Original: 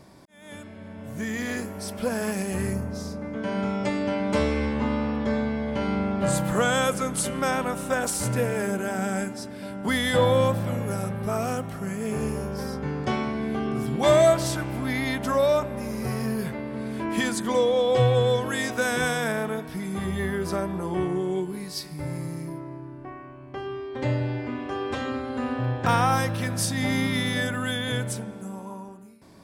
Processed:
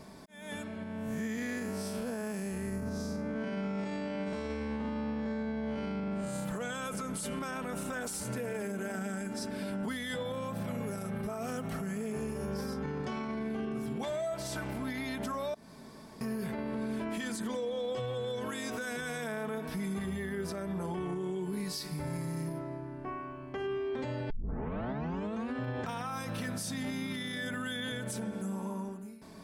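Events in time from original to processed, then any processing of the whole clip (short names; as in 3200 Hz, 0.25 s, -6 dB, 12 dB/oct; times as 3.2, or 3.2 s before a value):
0.83–6.45 time blur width 0.136 s
15.54–16.21 room tone
24.3 tape start 1.22 s
whole clip: comb 4.6 ms, depth 48%; compressor 6:1, threshold -28 dBFS; limiter -28.5 dBFS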